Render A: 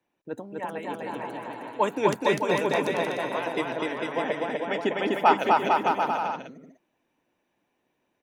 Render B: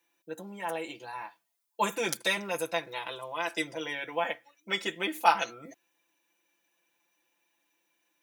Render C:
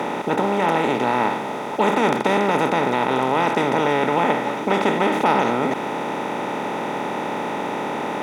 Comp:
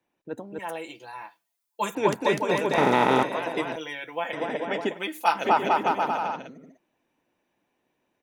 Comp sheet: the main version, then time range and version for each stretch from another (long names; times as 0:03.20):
A
0:00.59–0:01.95: punch in from B
0:02.78–0:03.23: punch in from C
0:03.76–0:04.33: punch in from B
0:04.92–0:05.40: punch in from B, crossfade 0.16 s